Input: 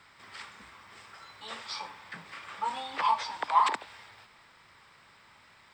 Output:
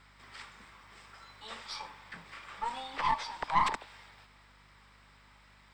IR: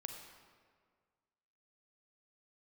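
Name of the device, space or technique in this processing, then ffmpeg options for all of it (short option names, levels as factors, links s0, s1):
valve amplifier with mains hum: -af "aeval=exprs='(tanh(7.94*val(0)+0.65)-tanh(0.65))/7.94':c=same,aeval=exprs='val(0)+0.000708*(sin(2*PI*50*n/s)+sin(2*PI*2*50*n/s)/2+sin(2*PI*3*50*n/s)/3+sin(2*PI*4*50*n/s)/4+sin(2*PI*5*50*n/s)/5)':c=same"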